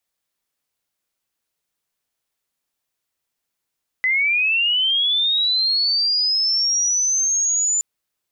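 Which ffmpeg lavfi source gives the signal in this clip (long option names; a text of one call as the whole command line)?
ffmpeg -f lavfi -i "aevalsrc='pow(10,(-15.5-1*t/3.77)/20)*sin(2*PI*(2000*t+5100*t*t/(2*3.77)))':duration=3.77:sample_rate=44100" out.wav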